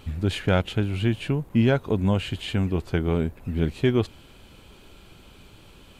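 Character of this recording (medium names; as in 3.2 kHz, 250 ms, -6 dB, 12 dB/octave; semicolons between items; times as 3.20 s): noise floor -51 dBFS; spectral tilt -6.5 dB/octave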